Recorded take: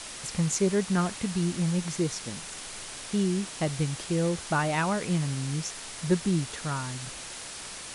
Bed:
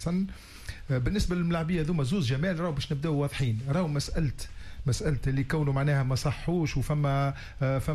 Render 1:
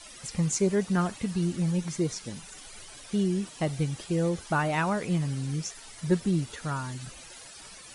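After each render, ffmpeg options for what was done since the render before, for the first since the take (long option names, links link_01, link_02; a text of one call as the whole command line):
ffmpeg -i in.wav -af "afftdn=noise_reduction=13:noise_floor=-41" out.wav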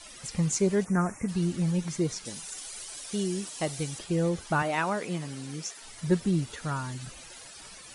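ffmpeg -i in.wav -filter_complex "[0:a]asplit=3[link_01][link_02][link_03];[link_01]afade=type=out:start_time=0.84:duration=0.02[link_04];[link_02]asuperstop=centerf=3700:order=8:qfactor=1.1,afade=type=in:start_time=0.84:duration=0.02,afade=type=out:start_time=1.27:duration=0.02[link_05];[link_03]afade=type=in:start_time=1.27:duration=0.02[link_06];[link_04][link_05][link_06]amix=inputs=3:normalize=0,asettb=1/sr,asplit=3[link_07][link_08][link_09];[link_07]atrim=end=2.254[link_10];[link_08]atrim=start=2.25:end=3.99,asetpts=PTS-STARTPTS,afade=type=in:duration=0.004:curve=qsin,afade=type=out:start_time=1.736:duration=0.004:curve=qsin,bass=frequency=250:gain=-7,treble=frequency=4000:gain=8[link_11];[link_09]atrim=start=3.986[link_12];[link_10][link_11]acrossfade=duration=0.004:curve1=hsin:curve2=qsin[link_13];[link_13][link_12]acrossfade=duration=0.004:curve1=qsin:curve2=hsin,asettb=1/sr,asplit=3[link_14][link_15][link_16];[link_14]atrim=end=4.624[link_17];[link_15]atrim=start=4.62:end=5.81,asetpts=PTS-STARTPTS,afade=type=in:duration=0.004:curve=qsin,afade=type=out:start_time=1.186:duration=0.004:curve=qsin,highpass=240[link_18];[link_16]atrim=start=5.806[link_19];[link_17][link_18]acrossfade=duration=0.004:curve1=hsin:curve2=qsin[link_20];[link_20][link_19]acrossfade=duration=0.004:curve1=qsin:curve2=hsin" out.wav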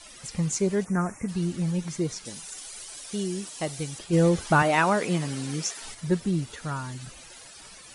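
ffmpeg -i in.wav -filter_complex "[0:a]asplit=3[link_01][link_02][link_03];[link_01]afade=type=out:start_time=4.12:duration=0.02[link_04];[link_02]acontrast=71,afade=type=in:start_time=4.12:duration=0.02,afade=type=out:start_time=5.93:duration=0.02[link_05];[link_03]afade=type=in:start_time=5.93:duration=0.02[link_06];[link_04][link_05][link_06]amix=inputs=3:normalize=0" out.wav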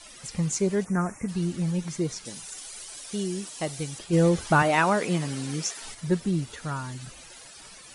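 ffmpeg -i in.wav -af "bandreject=frequency=50:width_type=h:width=6,bandreject=frequency=100:width_type=h:width=6" out.wav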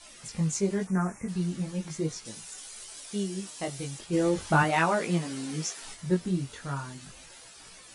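ffmpeg -i in.wav -af "flanger=delay=17.5:depth=4.7:speed=0.39" out.wav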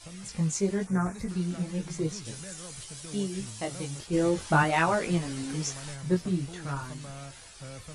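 ffmpeg -i in.wav -i bed.wav -filter_complex "[1:a]volume=-16.5dB[link_01];[0:a][link_01]amix=inputs=2:normalize=0" out.wav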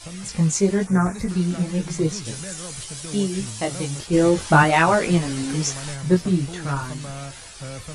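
ffmpeg -i in.wav -af "volume=8.5dB,alimiter=limit=-3dB:level=0:latency=1" out.wav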